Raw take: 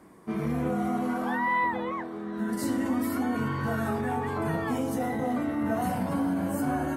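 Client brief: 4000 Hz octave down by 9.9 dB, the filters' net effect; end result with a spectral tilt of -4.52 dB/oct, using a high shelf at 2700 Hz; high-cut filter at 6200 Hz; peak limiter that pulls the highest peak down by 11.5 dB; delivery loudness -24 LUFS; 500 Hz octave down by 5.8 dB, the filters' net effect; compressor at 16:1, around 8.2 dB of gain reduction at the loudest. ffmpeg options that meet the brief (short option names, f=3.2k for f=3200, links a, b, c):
-af "lowpass=6.2k,equalizer=f=500:t=o:g=-7.5,highshelf=f=2.7k:g=-6.5,equalizer=f=4k:t=o:g=-7.5,acompressor=threshold=-34dB:ratio=16,volume=21.5dB,alimiter=limit=-17dB:level=0:latency=1"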